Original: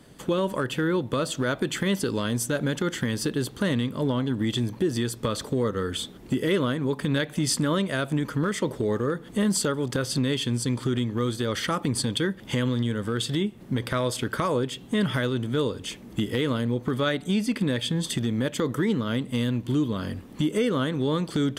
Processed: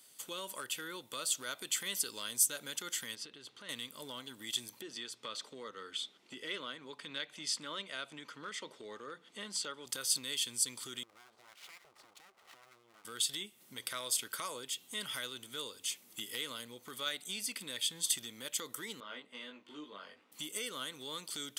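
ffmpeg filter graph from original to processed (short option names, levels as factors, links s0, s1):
-filter_complex "[0:a]asettb=1/sr,asplit=3[s0][s1][s2];[s0]atrim=end=3.154[s3];[s1]atrim=start=3.15:end=3.69,asetpts=PTS-STARTPTS,afade=t=in:d=0.004:c=qsin,afade=t=out:st=0.536:d=0.004:c=qsin,lowpass=3200,acompressor=threshold=0.0316:ratio=3:attack=3.2:release=140:knee=1:detection=peak[s4];[s2]atrim=start=3.686[s5];[s3][s4]acrossfade=d=0.004:c1=hsin:c2=qsin[s6];[s6][s5]acrossfade=d=0.004:c1=qsin:c2=hsin,asettb=1/sr,asplit=3[s7][s8][s9];[s7]atrim=end=4.814[s10];[s8]atrim=start=4.81:end=9.86,asetpts=PTS-STARTPTS,afade=t=in:d=0.004:c=qsin,afade=t=out:st=5.046:d=0.004:c=qsin,highpass=130,lowpass=3800,bandreject=f=60:t=h:w=6,bandreject=f=120:t=h:w=6,bandreject=f=180:t=h:w=6[s11];[s9]atrim=start=9.856[s12];[s10][s11]acrossfade=d=0.004:c1=hsin:c2=qsin[s13];[s13][s12]acrossfade=d=0.004:c1=qsin:c2=hsin,asettb=1/sr,asplit=3[s14][s15][s16];[s14]atrim=end=11.034[s17];[s15]atrim=start=11.03:end=13.05,asetpts=PTS-STARTPTS,afade=t=in:d=0.004:c=qsin,afade=t=out:st=2.016:d=0.004:c=qsin,lowpass=f=990:t=q:w=6.9,aeval=exprs='abs(val(0))':c=same,acompressor=threshold=0.0178:ratio=12:attack=3.2:release=140:knee=1:detection=peak[s18];[s16]atrim=start=13.046[s19];[s17][s18]acrossfade=d=0.004:c1=hsin:c2=qsin[s20];[s20][s19]acrossfade=d=0.004:c1=qsin:c2=hsin,asettb=1/sr,asplit=3[s21][s22][s23];[s21]atrim=end=19.004[s24];[s22]atrim=start=19:end=20.32,asetpts=PTS-STARTPTS,afade=t=in:d=0.004:c=qsin,afade=t=out:st=1.316:d=0.004:c=qsin,highpass=300,lowpass=2100,asplit=2[s25][s26];[s26]adelay=20,volume=0.708[s27];[s25][s27]amix=inputs=2:normalize=0,atrim=end_sample=58212[s28];[s23]atrim=start=20.316[s29];[s24][s28]acrossfade=d=0.004:c1=hsin:c2=qsin[s30];[s30][s29]acrossfade=d=0.004:c1=qsin:c2=hsin,aderivative,bandreject=f=1700:w=10,volume=1.26"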